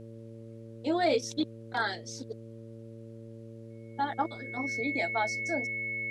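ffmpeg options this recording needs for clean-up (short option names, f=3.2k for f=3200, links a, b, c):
-af "bandreject=f=113.4:t=h:w=4,bandreject=f=226.8:t=h:w=4,bandreject=f=340.2:t=h:w=4,bandreject=f=453.6:t=h:w=4,bandreject=f=567:t=h:w=4,bandreject=f=2.2k:w=30,agate=range=-21dB:threshold=-38dB"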